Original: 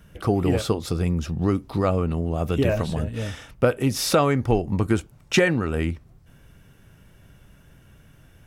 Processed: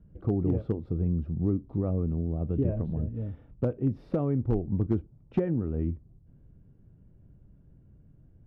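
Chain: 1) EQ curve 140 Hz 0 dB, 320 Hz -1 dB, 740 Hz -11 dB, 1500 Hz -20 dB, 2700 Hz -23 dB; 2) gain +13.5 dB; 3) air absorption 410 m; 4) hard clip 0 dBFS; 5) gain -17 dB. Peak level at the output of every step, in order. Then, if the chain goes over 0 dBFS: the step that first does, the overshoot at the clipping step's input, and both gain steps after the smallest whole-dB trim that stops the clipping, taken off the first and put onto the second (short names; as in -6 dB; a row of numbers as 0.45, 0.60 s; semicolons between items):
-8.5, +5.0, +4.5, 0.0, -17.0 dBFS; step 2, 4.5 dB; step 2 +8.5 dB, step 5 -12 dB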